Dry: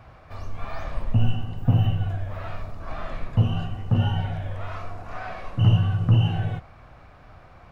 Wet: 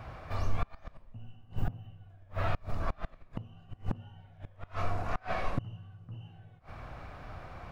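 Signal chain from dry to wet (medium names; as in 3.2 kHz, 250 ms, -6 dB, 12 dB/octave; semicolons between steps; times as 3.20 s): inverted gate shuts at -21 dBFS, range -30 dB; trim +3 dB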